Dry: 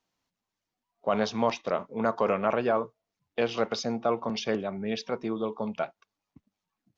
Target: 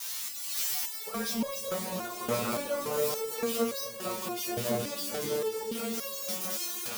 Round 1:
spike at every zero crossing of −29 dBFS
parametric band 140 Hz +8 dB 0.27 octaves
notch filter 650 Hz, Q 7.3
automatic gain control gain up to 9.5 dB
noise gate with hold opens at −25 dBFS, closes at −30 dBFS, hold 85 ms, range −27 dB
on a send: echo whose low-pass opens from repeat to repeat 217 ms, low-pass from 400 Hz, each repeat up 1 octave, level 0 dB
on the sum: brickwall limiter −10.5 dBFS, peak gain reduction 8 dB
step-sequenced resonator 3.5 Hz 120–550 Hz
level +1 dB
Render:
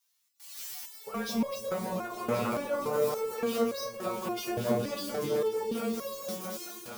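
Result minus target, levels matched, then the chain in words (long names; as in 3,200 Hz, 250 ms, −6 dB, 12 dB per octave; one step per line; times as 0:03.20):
spike at every zero crossing: distortion −11 dB
spike at every zero crossing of −18 dBFS
parametric band 140 Hz +8 dB 0.27 octaves
notch filter 650 Hz, Q 7.3
automatic gain control gain up to 9.5 dB
noise gate with hold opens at −25 dBFS, closes at −30 dBFS, hold 85 ms, range −27 dB
on a send: echo whose low-pass opens from repeat to repeat 217 ms, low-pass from 400 Hz, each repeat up 1 octave, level 0 dB
on the sum: brickwall limiter −10.5 dBFS, peak gain reduction 8 dB
step-sequenced resonator 3.5 Hz 120–550 Hz
level +1 dB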